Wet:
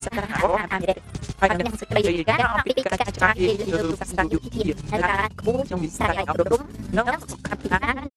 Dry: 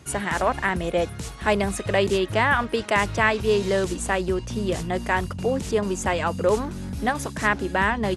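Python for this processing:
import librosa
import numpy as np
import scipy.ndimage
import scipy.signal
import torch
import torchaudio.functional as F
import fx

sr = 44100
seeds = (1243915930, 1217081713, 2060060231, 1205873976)

y = fx.granulator(x, sr, seeds[0], grain_ms=100.0, per_s=20.0, spray_ms=100.0, spread_st=3)
y = fx.transient(y, sr, attack_db=6, sustain_db=-8)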